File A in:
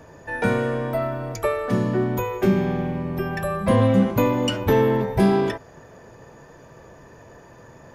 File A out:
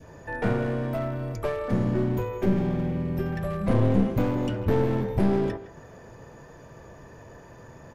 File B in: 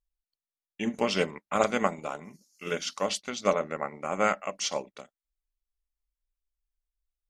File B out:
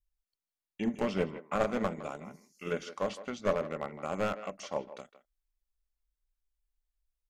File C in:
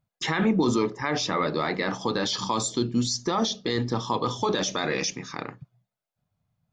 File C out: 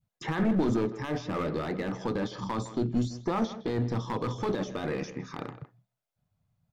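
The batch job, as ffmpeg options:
ffmpeg -i in.wav -filter_complex "[0:a]lowshelf=frequency=140:gain=5.5,acrossover=split=1800[link_01][link_02];[link_02]acompressor=threshold=-47dB:ratio=6[link_03];[link_01][link_03]amix=inputs=2:normalize=0,aeval=exprs='clip(val(0),-1,0.075)':channel_layout=same,asplit=2[link_04][link_05];[link_05]adelay=160,highpass=300,lowpass=3400,asoftclip=type=hard:threshold=-15dB,volume=-13dB[link_06];[link_04][link_06]amix=inputs=2:normalize=0,adynamicequalizer=threshold=0.01:dfrequency=1000:dqfactor=0.84:tfrequency=1000:tqfactor=0.84:attack=5:release=100:ratio=0.375:range=3.5:mode=cutabove:tftype=bell,volume=-2dB" out.wav

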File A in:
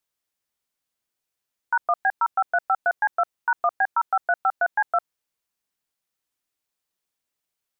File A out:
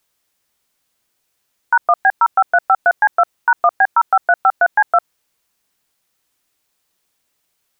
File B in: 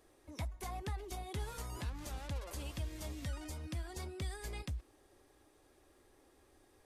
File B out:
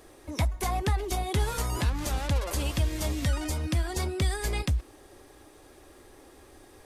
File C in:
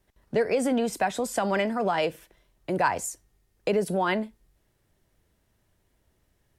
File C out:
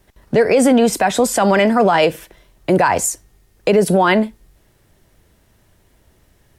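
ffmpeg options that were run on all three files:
ffmpeg -i in.wav -af "alimiter=level_in=17.5dB:limit=-1dB:release=50:level=0:latency=1,volume=-3.5dB" out.wav

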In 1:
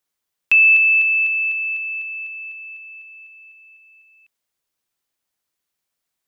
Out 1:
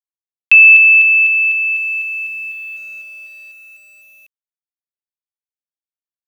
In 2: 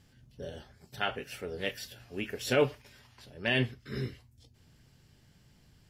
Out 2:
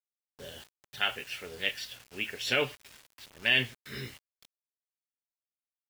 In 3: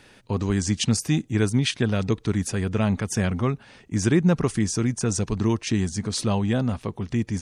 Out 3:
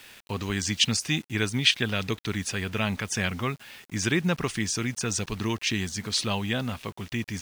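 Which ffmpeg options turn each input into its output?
ffmpeg -i in.wav -af "equalizer=frequency=2900:width=0.51:gain=14.5,acrusher=bits=6:mix=0:aa=0.000001,volume=-7.5dB" out.wav

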